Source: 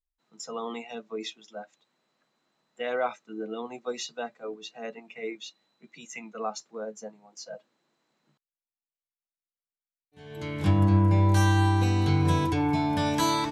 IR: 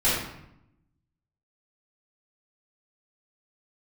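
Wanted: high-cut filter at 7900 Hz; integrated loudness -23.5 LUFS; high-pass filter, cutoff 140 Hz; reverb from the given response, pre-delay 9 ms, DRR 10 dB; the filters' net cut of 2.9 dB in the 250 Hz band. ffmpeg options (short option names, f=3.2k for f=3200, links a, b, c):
-filter_complex "[0:a]highpass=140,lowpass=7.9k,equalizer=f=250:t=o:g=-3.5,asplit=2[a][b];[1:a]atrim=start_sample=2205,adelay=9[c];[b][c]afir=irnorm=-1:irlink=0,volume=-25dB[d];[a][d]amix=inputs=2:normalize=0,volume=6dB"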